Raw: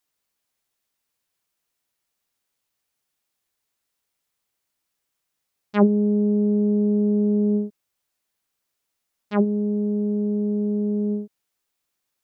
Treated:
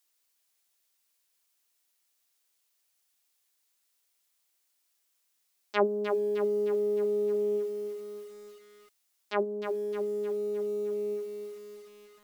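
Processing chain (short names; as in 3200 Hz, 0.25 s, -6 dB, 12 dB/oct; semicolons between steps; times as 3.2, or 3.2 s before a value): elliptic high-pass 270 Hz, stop band 60 dB; high shelf 2200 Hz +10.5 dB, from 9.43 s +3 dB; lo-fi delay 0.306 s, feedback 55%, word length 8-bit, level -7 dB; gain -4 dB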